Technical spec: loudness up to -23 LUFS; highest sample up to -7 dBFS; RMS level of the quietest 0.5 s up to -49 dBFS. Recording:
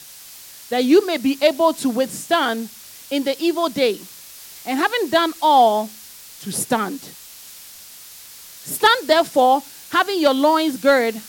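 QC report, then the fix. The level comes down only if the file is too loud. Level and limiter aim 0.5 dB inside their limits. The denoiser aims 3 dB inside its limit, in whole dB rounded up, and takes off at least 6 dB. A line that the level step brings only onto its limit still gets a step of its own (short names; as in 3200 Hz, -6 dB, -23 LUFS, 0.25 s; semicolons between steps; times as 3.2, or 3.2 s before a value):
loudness -18.5 LUFS: fail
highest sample -4.5 dBFS: fail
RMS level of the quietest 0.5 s -41 dBFS: fail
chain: denoiser 6 dB, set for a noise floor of -41 dBFS; gain -5 dB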